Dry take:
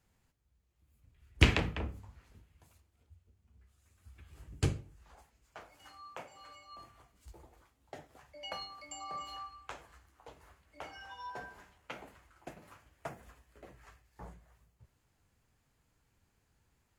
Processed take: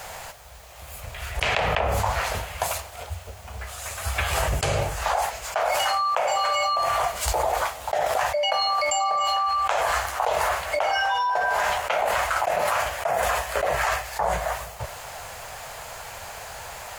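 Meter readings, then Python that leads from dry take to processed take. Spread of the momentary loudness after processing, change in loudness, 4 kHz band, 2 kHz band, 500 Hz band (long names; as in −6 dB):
14 LU, +13.5 dB, +15.5 dB, +17.0 dB, +22.5 dB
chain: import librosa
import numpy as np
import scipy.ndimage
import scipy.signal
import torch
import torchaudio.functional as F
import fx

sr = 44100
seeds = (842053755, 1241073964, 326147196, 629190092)

y = fx.low_shelf_res(x, sr, hz=430.0, db=-13.5, q=3.0)
y = fx.env_flatten(y, sr, amount_pct=100)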